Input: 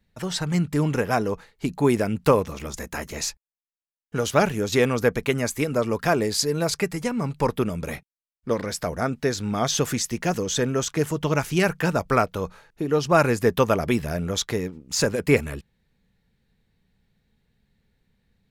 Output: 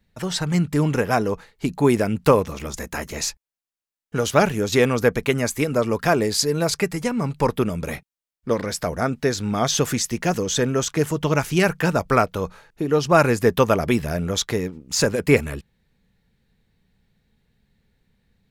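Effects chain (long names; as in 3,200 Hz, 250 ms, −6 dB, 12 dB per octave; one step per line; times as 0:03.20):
level +2.5 dB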